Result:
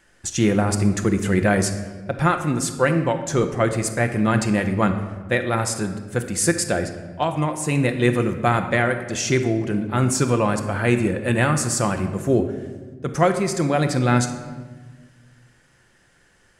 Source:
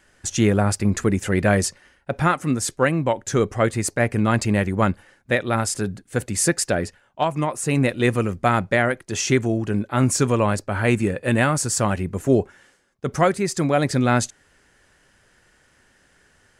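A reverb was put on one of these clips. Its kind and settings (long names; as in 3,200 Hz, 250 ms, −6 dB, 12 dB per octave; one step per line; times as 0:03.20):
rectangular room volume 1,200 cubic metres, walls mixed, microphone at 0.81 metres
level −1 dB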